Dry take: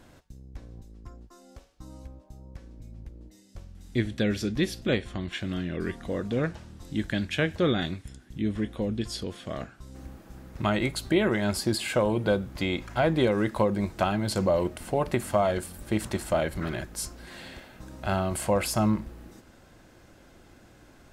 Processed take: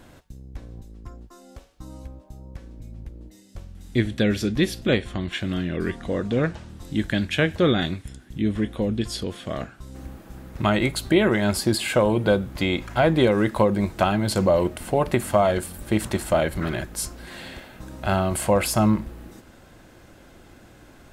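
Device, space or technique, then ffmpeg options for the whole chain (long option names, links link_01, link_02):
exciter from parts: -filter_complex "[0:a]asettb=1/sr,asplit=3[link_01][link_02][link_03];[link_01]atrim=end=5.904[link_04];[link_02]atrim=start=5.9:end=6.69,asetpts=PTS-STARTPTS,afade=type=in:duration=0.004:curve=qsin,afade=type=out:start_time=0.786:duration=0.004:curve=qsin,lowpass=9400[link_05];[link_03]atrim=start=6.686[link_06];[link_04][link_05]acrossfade=duration=0.004:curve1=hsin:curve2=qsin[link_07];[link_07][link_06]acrossfade=duration=0.004:curve1=qsin:curve2=hsin,asplit=2[link_08][link_09];[link_09]highpass=3400,asoftclip=type=tanh:threshold=-27.5dB,highpass=frequency=3900:width=0.5412,highpass=frequency=3900:width=1.3066,volume=-12.5dB[link_10];[link_08][link_10]amix=inputs=2:normalize=0,volume=5dB"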